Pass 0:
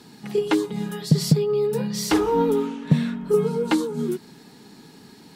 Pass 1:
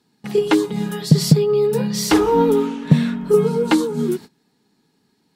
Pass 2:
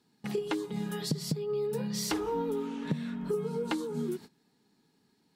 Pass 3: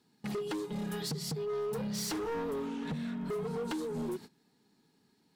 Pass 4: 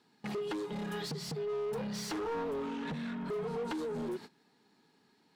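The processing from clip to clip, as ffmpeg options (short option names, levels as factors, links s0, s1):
-af "agate=range=0.0794:threshold=0.0141:ratio=16:detection=peak,volume=1.78"
-af "acompressor=threshold=0.0562:ratio=4,volume=0.501"
-af "volume=42.2,asoftclip=hard,volume=0.0237"
-filter_complex "[0:a]asplit=2[s0][s1];[s1]highpass=f=720:p=1,volume=3.55,asoftclip=type=tanh:threshold=0.0251[s2];[s0][s2]amix=inputs=2:normalize=0,lowpass=f=2500:p=1,volume=0.501,volume=1.12"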